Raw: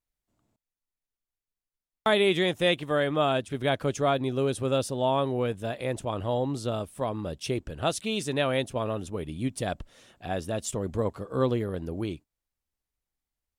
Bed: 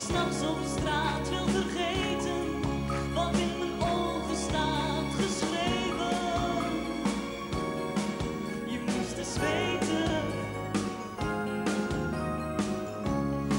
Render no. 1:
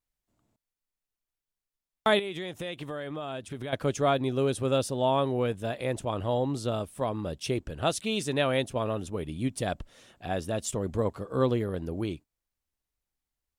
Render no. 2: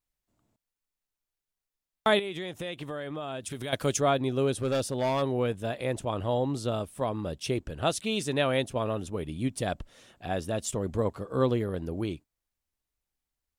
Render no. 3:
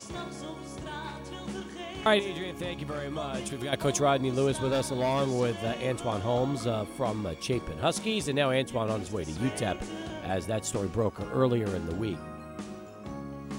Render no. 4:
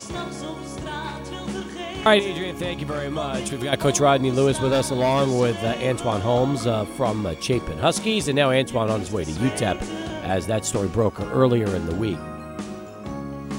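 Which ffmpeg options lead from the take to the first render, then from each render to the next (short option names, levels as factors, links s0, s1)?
-filter_complex "[0:a]asettb=1/sr,asplit=3[s0][s1][s2];[s0]atrim=end=2.194[s3];[s1]atrim=start=2.19:end=3.73,asetpts=PTS-STARTPTS,afade=t=in:d=0.004:c=qsin,afade=t=out:st=1.536:d=0.004:c=qsin,acompressor=threshold=0.0251:ratio=8:attack=3.2:release=140:knee=1:detection=peak[s4];[s2]atrim=start=3.726[s5];[s3][s4]acrossfade=d=0.004:c1=hsin:c2=qsin[s6];[s6][s5]acrossfade=d=0.004:c1=qsin:c2=hsin"
-filter_complex "[0:a]asplit=3[s0][s1][s2];[s0]afade=t=out:st=3.41:d=0.02[s3];[s1]highshelf=f=3700:g=12,afade=t=in:st=3.41:d=0.02,afade=t=out:st=3.99:d=0.02[s4];[s2]afade=t=in:st=3.99:d=0.02[s5];[s3][s4][s5]amix=inputs=3:normalize=0,asplit=3[s6][s7][s8];[s6]afade=t=out:st=4.57:d=0.02[s9];[s7]asoftclip=type=hard:threshold=0.0708,afade=t=in:st=4.57:d=0.02,afade=t=out:st=5.21:d=0.02[s10];[s8]afade=t=in:st=5.21:d=0.02[s11];[s9][s10][s11]amix=inputs=3:normalize=0"
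-filter_complex "[1:a]volume=0.335[s0];[0:a][s0]amix=inputs=2:normalize=0"
-af "volume=2.37"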